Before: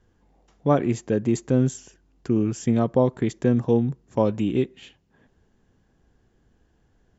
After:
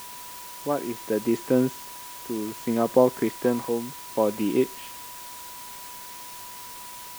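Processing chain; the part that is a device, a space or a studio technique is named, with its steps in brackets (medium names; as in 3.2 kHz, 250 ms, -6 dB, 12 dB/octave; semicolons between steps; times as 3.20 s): shortwave radio (band-pass 280–2900 Hz; tremolo 0.65 Hz, depth 63%; whistle 980 Hz -46 dBFS; white noise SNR 14 dB); 3.29–3.69 s: dynamic bell 900 Hz, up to +7 dB, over -46 dBFS, Q 1.3; trim +3 dB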